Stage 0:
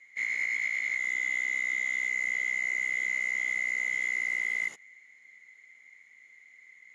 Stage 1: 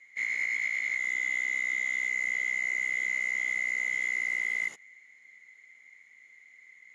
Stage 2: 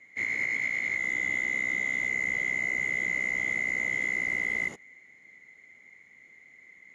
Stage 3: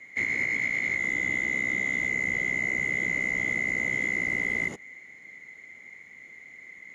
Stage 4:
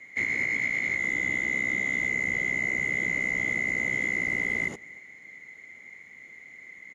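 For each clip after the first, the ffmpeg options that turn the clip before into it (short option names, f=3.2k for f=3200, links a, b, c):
-af anull
-af "tiltshelf=f=830:g=9.5,volume=7.5dB"
-filter_complex "[0:a]acrossover=split=460[a][b];[b]acompressor=threshold=-34dB:ratio=2.5[c];[a][c]amix=inputs=2:normalize=0,volume=7dB"
-af "aecho=1:1:234:0.0708"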